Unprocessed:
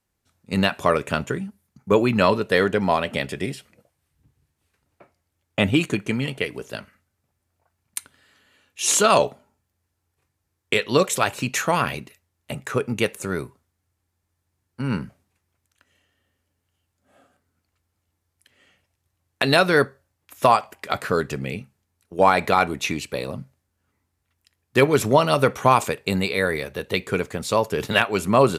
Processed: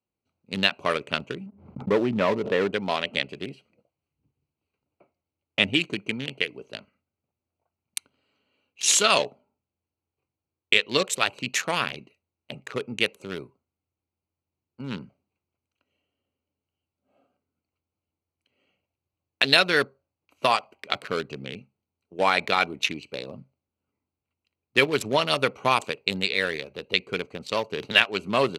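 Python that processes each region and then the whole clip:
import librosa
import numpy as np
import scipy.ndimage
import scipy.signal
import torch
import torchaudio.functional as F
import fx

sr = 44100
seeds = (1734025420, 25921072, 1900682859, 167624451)

y = fx.chain(x, sr, fx.lowpass(hz=1100.0, slope=12),
    fx.leveller(passes=1),
    fx.pre_swell(db_per_s=90.0), at=(1.46, 2.73))
y = fx.wiener(y, sr, points=25)
y = fx.weighting(y, sr, curve='D')
y = F.gain(torch.from_numpy(y), -6.0).numpy()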